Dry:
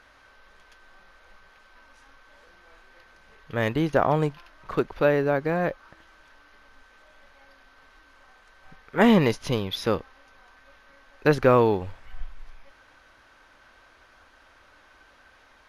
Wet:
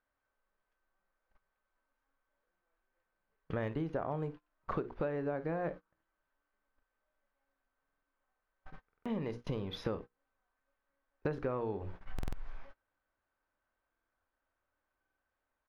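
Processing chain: in parallel at -11 dB: soft clip -14 dBFS, distortion -14 dB; on the sum: LPF 1100 Hz 6 dB/oct; notches 60/120/180/240/300/360/420/480 Hz; early reflections 25 ms -17.5 dB, 54 ms -17 dB; compressor 10:1, threshold -34 dBFS, peak gain reduction 21.5 dB; gate -45 dBFS, range -30 dB; stuck buffer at 7.84/8.87/12.14/13.9/14.99, samples 2048, times 3; gain +1 dB

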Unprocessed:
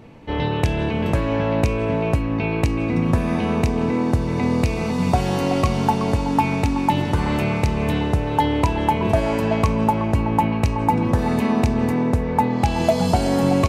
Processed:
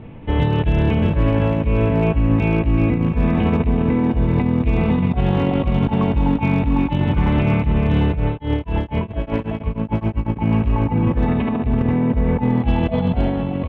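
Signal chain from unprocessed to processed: negative-ratio compressor -21 dBFS, ratio -0.5; steep low-pass 3600 Hz 72 dB/oct; low shelf 190 Hz +10.5 dB; limiter -8.5 dBFS, peak gain reduction 4.5 dB; hard clip -9.5 dBFS, distortion -33 dB; echo 0.697 s -15 dB; 8.15–10.37 tremolo triangle 3.3 Hz -> 9.5 Hz, depth 100%

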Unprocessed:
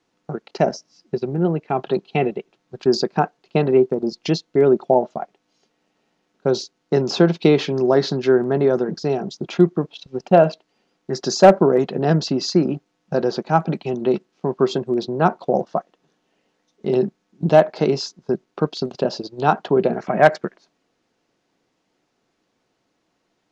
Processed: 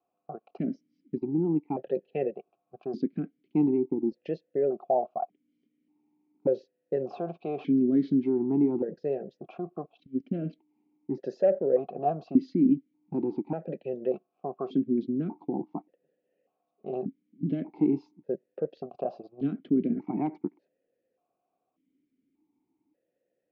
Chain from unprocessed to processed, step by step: tilt -4.5 dB/oct; limiter -2.5 dBFS, peak gain reduction 9 dB; vowel sequencer 1.7 Hz; gain -2.5 dB

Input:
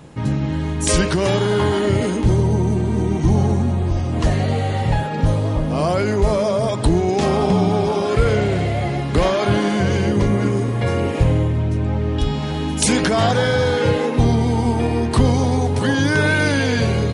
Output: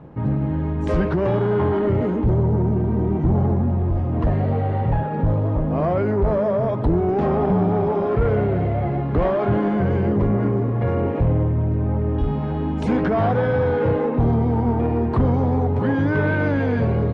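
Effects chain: LPF 1200 Hz 12 dB/oct; soft clip -11.5 dBFS, distortion -17 dB

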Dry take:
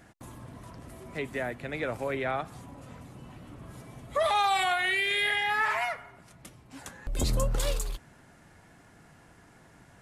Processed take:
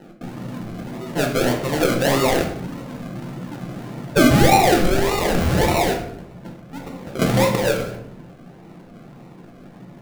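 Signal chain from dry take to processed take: HPF 150 Hz 24 dB/oct; tilt shelf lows +7.5 dB; decimation with a swept rate 38×, swing 60% 1.7 Hz; shoebox room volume 170 m³, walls mixed, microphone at 0.82 m; mismatched tape noise reduction decoder only; gain +8.5 dB

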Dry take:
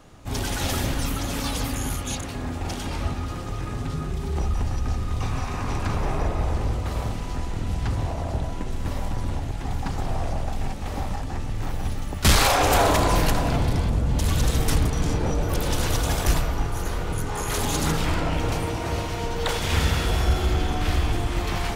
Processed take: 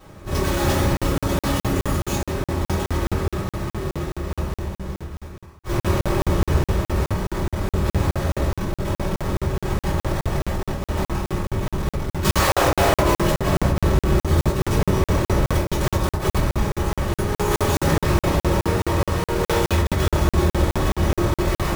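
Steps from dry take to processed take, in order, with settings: half-waves squared off; limiter -13 dBFS, peak gain reduction 53.5 dB; soft clip -14 dBFS, distortion -21 dB; reverb RT60 0.60 s, pre-delay 3 ms, DRR -9.5 dB; crackling interface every 0.21 s, samples 2048, zero, from 0.97; gain -7.5 dB

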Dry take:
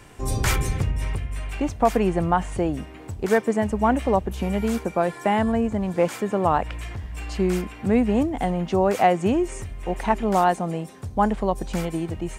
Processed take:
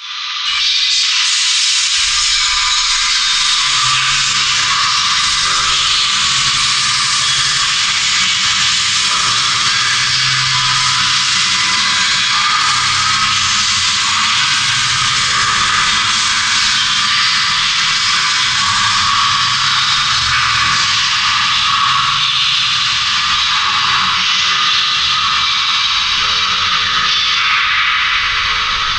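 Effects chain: tape stop at the end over 0.88 s; elliptic high-pass 2700 Hz, stop band 40 dB; bell 11000 Hz +10.5 dB 2 oct; compressor, threshold -39 dBFS, peak gain reduction 20 dB; echoes that change speed 0.194 s, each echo +5 st, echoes 2; on a send: diffused feedback echo 0.957 s, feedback 50%, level -5.5 dB; on the sum: FDN reverb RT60 2.3 s, low-frequency decay 1×, high-frequency decay 0.7×, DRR -9.5 dB; speed mistake 78 rpm record played at 33 rpm; maximiser +29.5 dB; three-band expander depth 70%; gain -3 dB

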